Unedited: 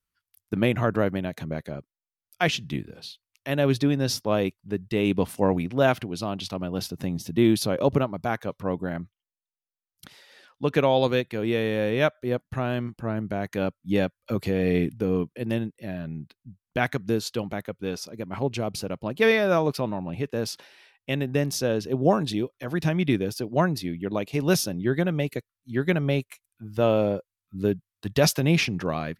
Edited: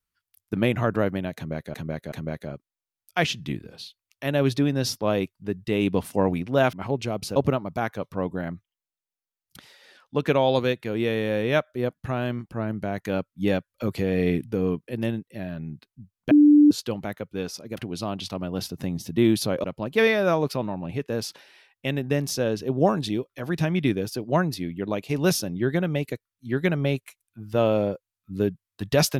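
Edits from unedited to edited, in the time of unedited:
1.36–1.74 s: loop, 3 plays
5.97–7.84 s: swap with 18.25–18.88 s
16.79–17.19 s: bleep 295 Hz -10.5 dBFS

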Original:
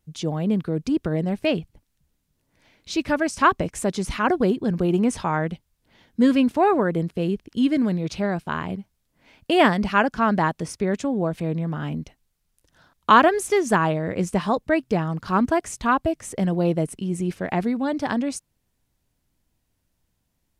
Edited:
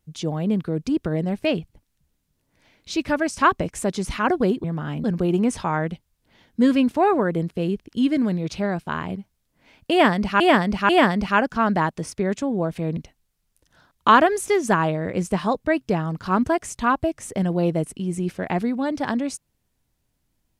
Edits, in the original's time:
9.51–10.00 s: loop, 3 plays
11.59–11.99 s: move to 4.64 s

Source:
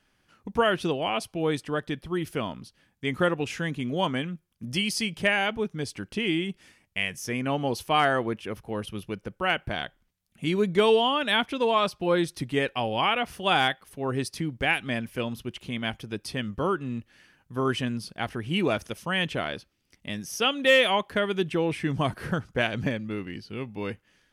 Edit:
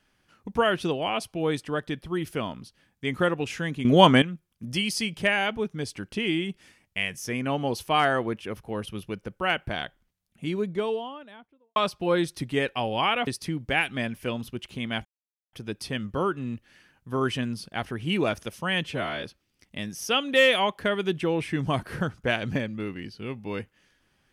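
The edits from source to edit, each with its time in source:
3.85–4.22 s: gain +11 dB
9.82–11.76 s: studio fade out
13.27–14.19 s: delete
15.97 s: insert silence 0.48 s
19.28–19.54 s: stretch 1.5×

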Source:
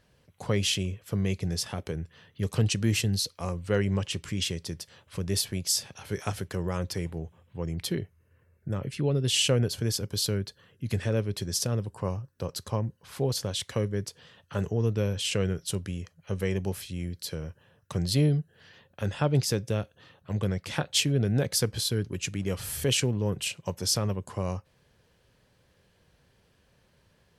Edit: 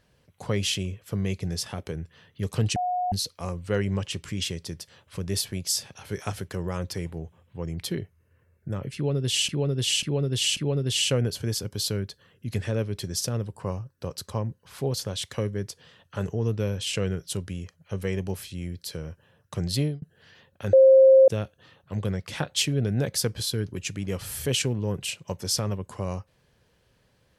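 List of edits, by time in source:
2.76–3.12 s: bleep 724 Hz -23.5 dBFS
8.95–9.49 s: loop, 4 plays
18.15–18.40 s: fade out
19.11–19.66 s: bleep 531 Hz -10.5 dBFS

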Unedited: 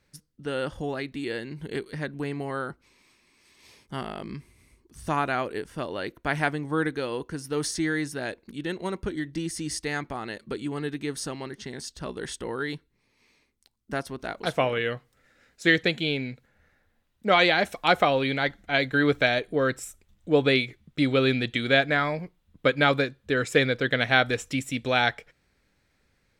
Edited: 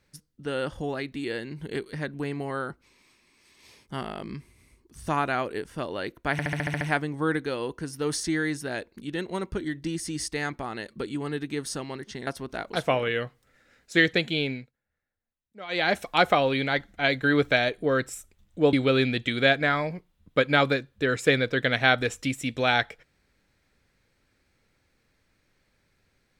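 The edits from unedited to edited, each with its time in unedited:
6.32 s: stutter 0.07 s, 8 plays
11.78–13.97 s: delete
16.21–17.59 s: dip -20.5 dB, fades 0.21 s
20.43–21.01 s: delete

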